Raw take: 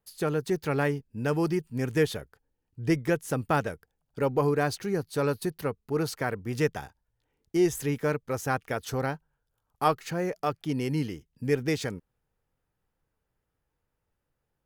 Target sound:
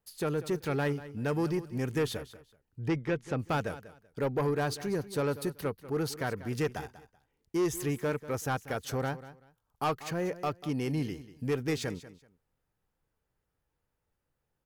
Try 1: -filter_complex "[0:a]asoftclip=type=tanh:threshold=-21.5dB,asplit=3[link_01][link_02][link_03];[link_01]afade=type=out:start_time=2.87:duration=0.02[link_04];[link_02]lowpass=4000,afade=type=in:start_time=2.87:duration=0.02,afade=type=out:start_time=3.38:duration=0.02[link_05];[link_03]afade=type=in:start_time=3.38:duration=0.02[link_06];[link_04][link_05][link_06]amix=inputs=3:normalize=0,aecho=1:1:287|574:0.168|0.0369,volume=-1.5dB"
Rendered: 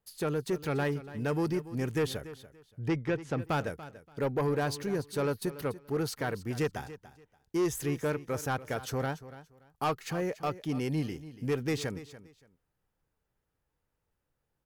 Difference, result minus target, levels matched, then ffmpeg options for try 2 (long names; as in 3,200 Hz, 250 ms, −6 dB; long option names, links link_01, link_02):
echo 96 ms late
-filter_complex "[0:a]asoftclip=type=tanh:threshold=-21.5dB,asplit=3[link_01][link_02][link_03];[link_01]afade=type=out:start_time=2.87:duration=0.02[link_04];[link_02]lowpass=4000,afade=type=in:start_time=2.87:duration=0.02,afade=type=out:start_time=3.38:duration=0.02[link_05];[link_03]afade=type=in:start_time=3.38:duration=0.02[link_06];[link_04][link_05][link_06]amix=inputs=3:normalize=0,aecho=1:1:191|382:0.168|0.0369,volume=-1.5dB"